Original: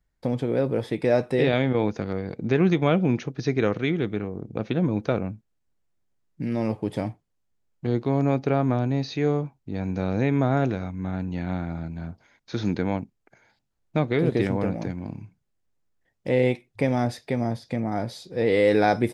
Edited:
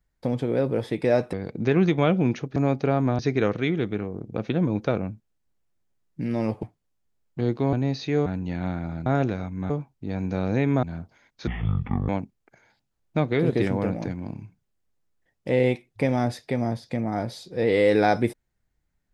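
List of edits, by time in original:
0:01.33–0:02.17: remove
0:06.84–0:07.09: remove
0:08.19–0:08.82: move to 0:03.40
0:09.35–0:10.48: swap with 0:11.12–0:11.92
0:12.56–0:12.88: play speed 52%

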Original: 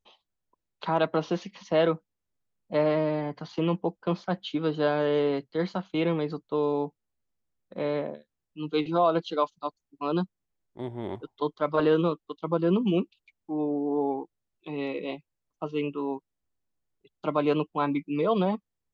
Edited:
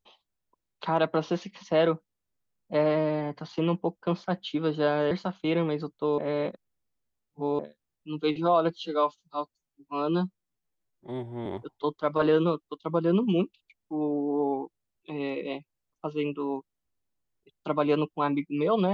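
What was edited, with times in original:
0:05.11–0:05.61: remove
0:06.68–0:08.09: reverse
0:09.20–0:11.04: time-stretch 1.5×

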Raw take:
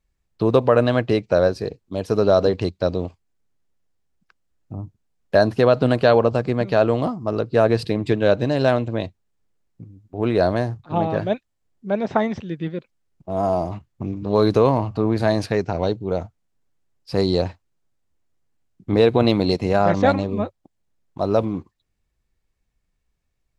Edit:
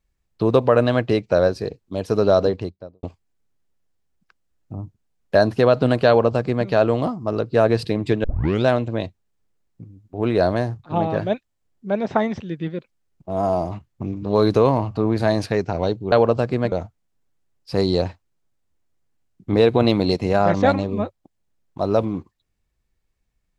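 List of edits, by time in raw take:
0:02.32–0:03.03: fade out and dull
0:06.08–0:06.68: duplicate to 0:16.12
0:08.24: tape start 0.42 s

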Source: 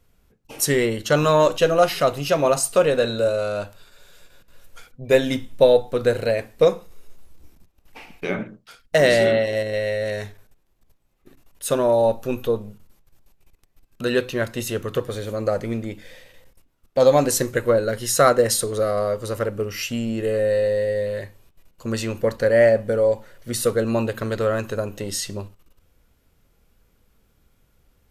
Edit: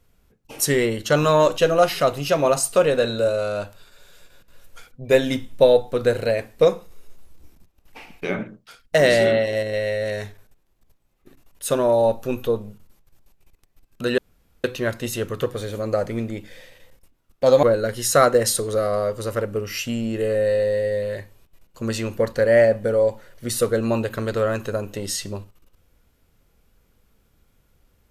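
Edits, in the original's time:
0:14.18: splice in room tone 0.46 s
0:17.17–0:17.67: remove

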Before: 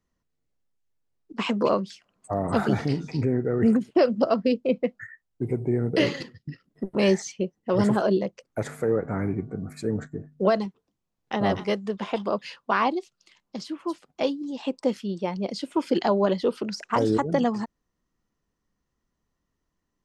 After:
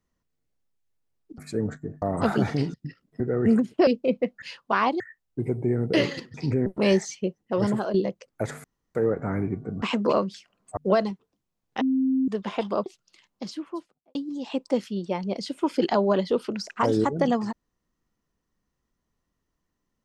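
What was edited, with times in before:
0:01.38–0:02.33: swap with 0:09.68–0:10.32
0:03.05–0:03.37: swap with 0:06.37–0:06.83
0:04.04–0:04.48: remove
0:07.57–0:08.11: fade out, to −7 dB
0:08.81: splice in room tone 0.31 s
0:11.36–0:11.83: beep over 263 Hz −19.5 dBFS
0:12.41–0:12.99: move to 0:05.03
0:13.61–0:14.28: fade out and dull

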